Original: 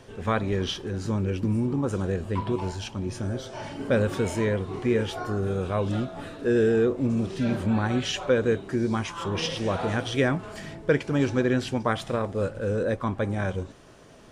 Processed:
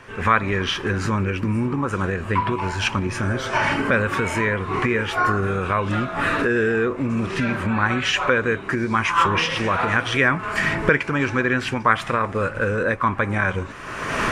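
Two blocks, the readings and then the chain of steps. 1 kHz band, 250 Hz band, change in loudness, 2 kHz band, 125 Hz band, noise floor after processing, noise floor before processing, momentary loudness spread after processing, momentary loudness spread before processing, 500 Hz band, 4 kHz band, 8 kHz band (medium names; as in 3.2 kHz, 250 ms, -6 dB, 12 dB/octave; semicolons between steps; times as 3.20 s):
+12.0 dB, +2.0 dB, +5.5 dB, +14.0 dB, +3.0 dB, -34 dBFS, -45 dBFS, 5 LU, 8 LU, +1.5 dB, +7.0 dB, +4.5 dB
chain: recorder AGC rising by 35 dB/s; high-order bell 1.6 kHz +12 dB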